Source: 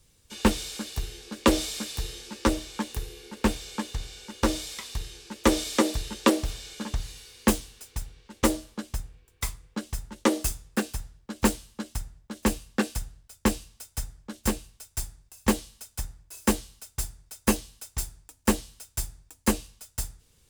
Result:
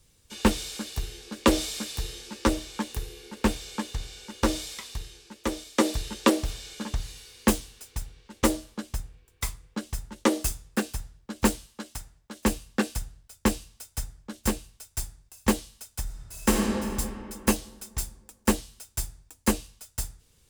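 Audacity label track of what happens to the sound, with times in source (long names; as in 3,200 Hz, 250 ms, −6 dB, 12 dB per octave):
4.620000	5.780000	fade out, to −16 dB
11.660000	12.450000	low-shelf EQ 260 Hz −8.5 dB
16.020000	16.900000	thrown reverb, RT60 2.6 s, DRR −1.5 dB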